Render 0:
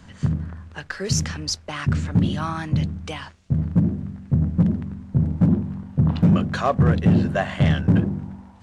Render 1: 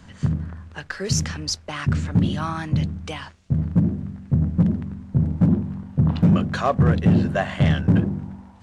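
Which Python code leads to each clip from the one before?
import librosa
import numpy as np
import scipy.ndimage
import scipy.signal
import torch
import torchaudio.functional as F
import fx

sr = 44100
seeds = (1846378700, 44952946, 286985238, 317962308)

y = x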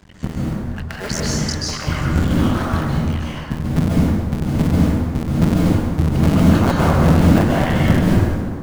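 y = fx.cycle_switch(x, sr, every=2, mode='muted')
y = fx.rev_plate(y, sr, seeds[0], rt60_s=1.7, hf_ratio=0.55, predelay_ms=120, drr_db=-5.0)
y = y * librosa.db_to_amplitude(1.0)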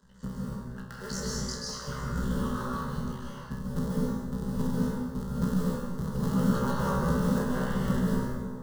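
y = fx.fixed_phaser(x, sr, hz=470.0, stages=8)
y = fx.comb_fb(y, sr, f0_hz=63.0, decay_s=0.52, harmonics='all', damping=0.0, mix_pct=90)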